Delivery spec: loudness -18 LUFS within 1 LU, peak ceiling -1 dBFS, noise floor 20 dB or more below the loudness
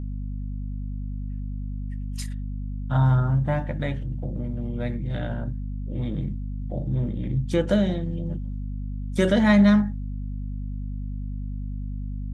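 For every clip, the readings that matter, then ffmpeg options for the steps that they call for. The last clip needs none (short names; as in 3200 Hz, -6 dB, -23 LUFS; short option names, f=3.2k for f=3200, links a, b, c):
hum 50 Hz; harmonics up to 250 Hz; hum level -28 dBFS; loudness -26.5 LUFS; peak -7.0 dBFS; loudness target -18.0 LUFS
-> -af "bandreject=f=50:t=h:w=6,bandreject=f=100:t=h:w=6,bandreject=f=150:t=h:w=6,bandreject=f=200:t=h:w=6,bandreject=f=250:t=h:w=6"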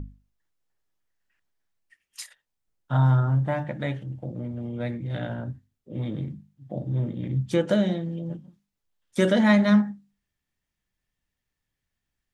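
hum none; loudness -25.5 LUFS; peak -7.5 dBFS; loudness target -18.0 LUFS
-> -af "volume=7.5dB,alimiter=limit=-1dB:level=0:latency=1"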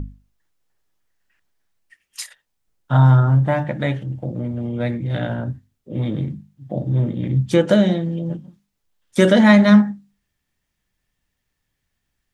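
loudness -18.0 LUFS; peak -1.0 dBFS; noise floor -76 dBFS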